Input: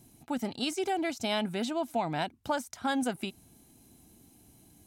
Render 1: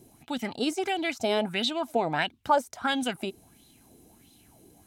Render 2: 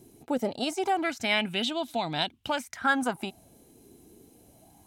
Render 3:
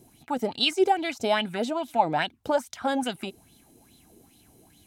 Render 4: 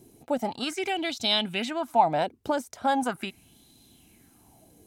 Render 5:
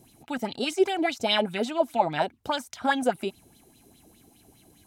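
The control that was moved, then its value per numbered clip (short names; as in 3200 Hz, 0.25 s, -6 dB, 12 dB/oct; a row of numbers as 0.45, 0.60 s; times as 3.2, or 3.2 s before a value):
LFO bell, rate: 1.5, 0.25, 2.4, 0.4, 4.9 Hz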